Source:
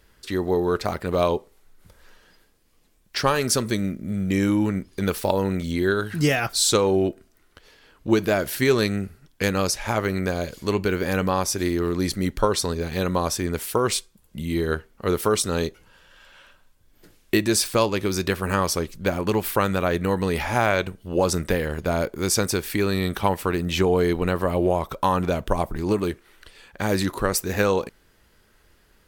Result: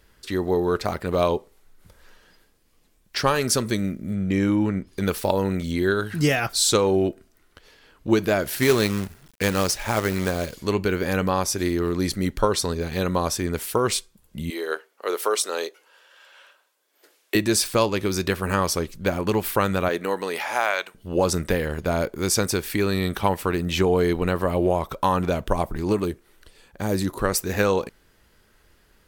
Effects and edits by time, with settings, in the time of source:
4.14–4.87 LPF 3300 Hz 6 dB/oct
8.49–10.55 companded quantiser 4-bit
14.5–17.35 HPF 410 Hz 24 dB/oct
19.88–20.94 HPF 260 Hz -> 940 Hz
26.05–27.19 bell 2100 Hz -7.5 dB 2.6 oct

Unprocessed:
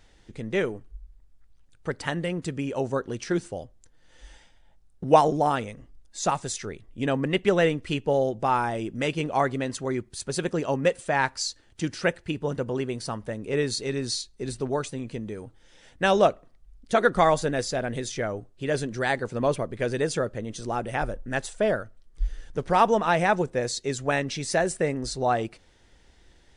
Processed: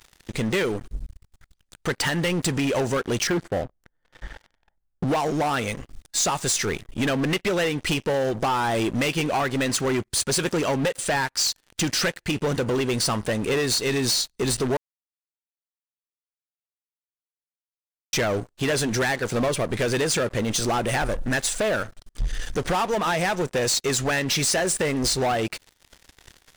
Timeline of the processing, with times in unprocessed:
3.27–5.07 polynomial smoothing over 41 samples
14.77–18.13 mute
whole clip: tilt shelf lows -4.5 dB, about 1200 Hz; compressor 12:1, threshold -30 dBFS; sample leveller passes 5; gain -2.5 dB

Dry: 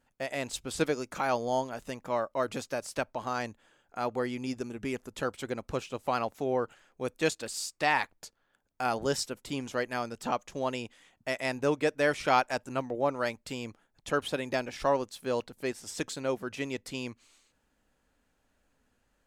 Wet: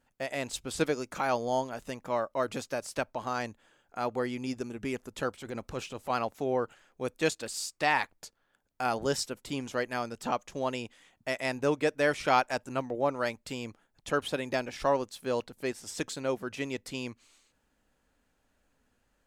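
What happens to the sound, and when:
5.33–6.1 transient shaper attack -7 dB, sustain +3 dB

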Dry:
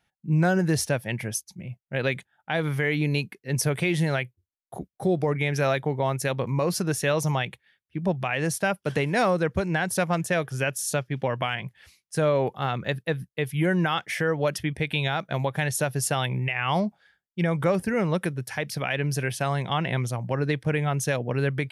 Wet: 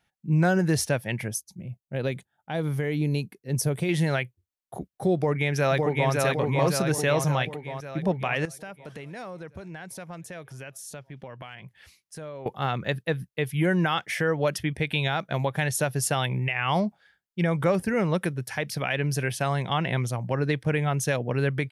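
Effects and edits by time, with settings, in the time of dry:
1.28–3.89 bell 2000 Hz -10 dB 2.2 oct
5.15–6.12 echo throw 0.56 s, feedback 60%, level -2 dB
8.45–12.46 compressor 2.5:1, threshold -44 dBFS

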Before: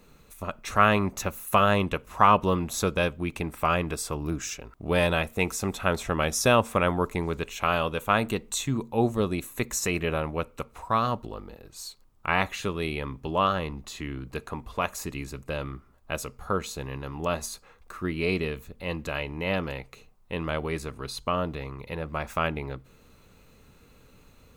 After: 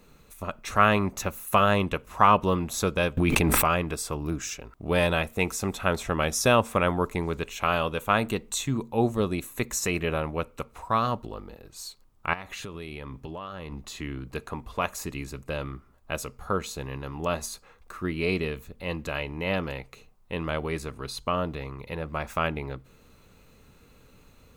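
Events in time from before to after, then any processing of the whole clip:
3.17–3.68 fast leveller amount 100%
12.33–13.72 compressor 12:1, threshold -33 dBFS

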